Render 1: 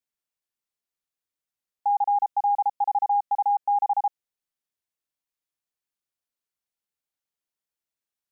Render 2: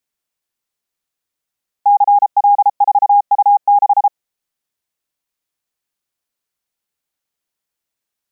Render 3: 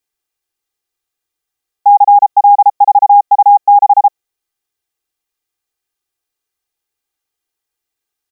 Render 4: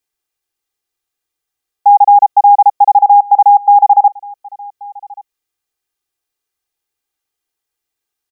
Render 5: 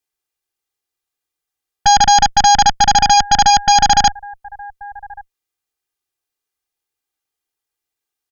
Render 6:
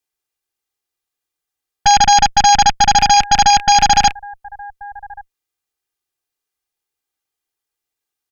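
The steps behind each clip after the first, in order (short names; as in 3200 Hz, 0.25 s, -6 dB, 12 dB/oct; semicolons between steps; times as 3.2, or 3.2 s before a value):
dynamic EQ 690 Hz, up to +4 dB, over -32 dBFS, Q 1.3; gain +8.5 dB
comb 2.5 ms, depth 70%
echo 1.132 s -23 dB
added harmonics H 3 -19 dB, 5 -13 dB, 7 -19 dB, 8 -9 dB, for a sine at -1 dBFS; gain -3.5 dB
rattling part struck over -37 dBFS, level -12 dBFS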